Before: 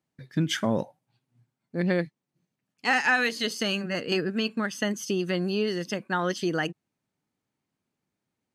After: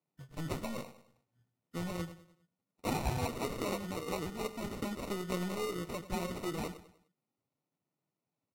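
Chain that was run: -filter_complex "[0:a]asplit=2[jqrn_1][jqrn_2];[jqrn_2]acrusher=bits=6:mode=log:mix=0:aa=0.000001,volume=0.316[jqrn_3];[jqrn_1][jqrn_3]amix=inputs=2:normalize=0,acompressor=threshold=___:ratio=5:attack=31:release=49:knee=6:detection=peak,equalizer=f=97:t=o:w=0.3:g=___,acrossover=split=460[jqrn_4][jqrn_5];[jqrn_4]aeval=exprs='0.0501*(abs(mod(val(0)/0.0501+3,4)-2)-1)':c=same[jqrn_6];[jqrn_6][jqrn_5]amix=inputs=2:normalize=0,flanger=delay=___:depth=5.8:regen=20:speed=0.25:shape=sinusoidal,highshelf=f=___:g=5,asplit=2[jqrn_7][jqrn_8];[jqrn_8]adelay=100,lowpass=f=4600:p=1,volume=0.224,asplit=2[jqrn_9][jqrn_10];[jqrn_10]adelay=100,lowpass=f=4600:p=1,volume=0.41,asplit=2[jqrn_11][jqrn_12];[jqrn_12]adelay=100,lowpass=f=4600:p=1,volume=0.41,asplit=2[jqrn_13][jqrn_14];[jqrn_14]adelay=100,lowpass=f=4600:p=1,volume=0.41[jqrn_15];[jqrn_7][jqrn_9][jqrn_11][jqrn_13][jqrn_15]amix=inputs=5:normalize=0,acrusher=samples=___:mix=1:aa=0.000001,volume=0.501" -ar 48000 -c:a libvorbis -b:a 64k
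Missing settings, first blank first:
0.0447, -3.5, 6.3, 2700, 27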